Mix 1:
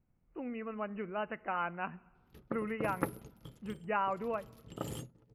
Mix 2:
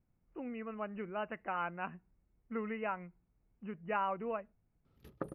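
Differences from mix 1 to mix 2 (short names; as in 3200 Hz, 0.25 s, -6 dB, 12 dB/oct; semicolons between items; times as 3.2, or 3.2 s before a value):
background: entry +2.70 s; reverb: off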